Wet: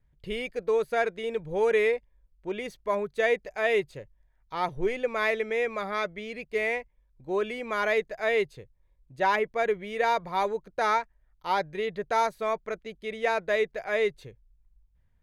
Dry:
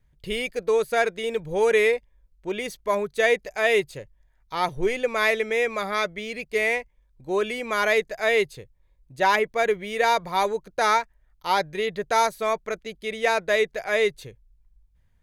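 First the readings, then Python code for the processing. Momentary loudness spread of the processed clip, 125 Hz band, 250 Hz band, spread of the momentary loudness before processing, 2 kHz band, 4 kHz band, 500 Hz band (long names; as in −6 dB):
9 LU, −3.5 dB, −3.5 dB, 9 LU, −5.5 dB, −8.0 dB, −3.5 dB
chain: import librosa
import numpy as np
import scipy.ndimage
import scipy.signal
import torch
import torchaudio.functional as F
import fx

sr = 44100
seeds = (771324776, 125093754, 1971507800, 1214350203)

y = fx.high_shelf(x, sr, hz=4300.0, db=-11.5)
y = y * 10.0 ** (-3.5 / 20.0)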